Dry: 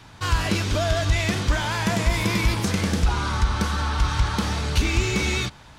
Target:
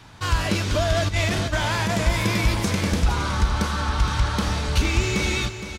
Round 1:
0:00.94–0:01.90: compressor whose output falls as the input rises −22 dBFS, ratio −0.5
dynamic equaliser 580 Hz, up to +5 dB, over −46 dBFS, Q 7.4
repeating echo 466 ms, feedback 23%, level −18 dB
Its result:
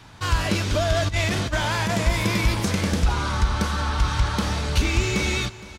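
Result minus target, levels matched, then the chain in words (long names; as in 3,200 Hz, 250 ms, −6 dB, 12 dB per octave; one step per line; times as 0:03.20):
echo-to-direct −7.5 dB
0:00.94–0:01.90: compressor whose output falls as the input rises −22 dBFS, ratio −0.5
dynamic equaliser 580 Hz, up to +5 dB, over −46 dBFS, Q 7.4
repeating echo 466 ms, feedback 23%, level −10.5 dB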